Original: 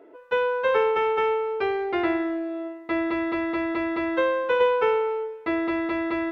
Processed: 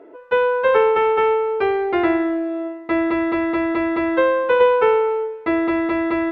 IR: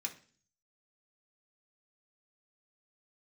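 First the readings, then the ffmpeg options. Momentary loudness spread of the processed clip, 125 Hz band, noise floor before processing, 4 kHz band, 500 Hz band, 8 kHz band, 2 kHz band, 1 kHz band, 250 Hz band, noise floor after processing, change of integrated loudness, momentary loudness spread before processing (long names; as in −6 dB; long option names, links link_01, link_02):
7 LU, +6.5 dB, −45 dBFS, +2.5 dB, +6.5 dB, can't be measured, +4.5 dB, +6.0 dB, +6.5 dB, −39 dBFS, +6.0 dB, 7 LU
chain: -af "lowpass=frequency=2500:poles=1,volume=6.5dB"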